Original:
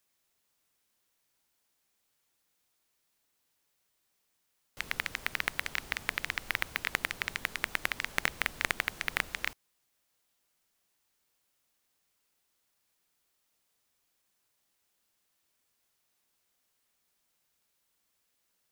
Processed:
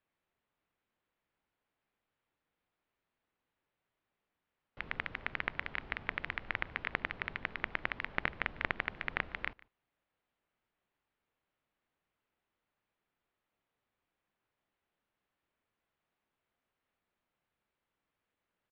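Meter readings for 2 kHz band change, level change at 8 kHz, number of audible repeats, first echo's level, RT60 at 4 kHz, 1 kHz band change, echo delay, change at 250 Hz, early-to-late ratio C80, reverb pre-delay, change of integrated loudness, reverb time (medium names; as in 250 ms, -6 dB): -4.0 dB, under -30 dB, 1, -23.0 dB, no reverb, -2.0 dB, 148 ms, -0.5 dB, no reverb, no reverb, -4.5 dB, no reverb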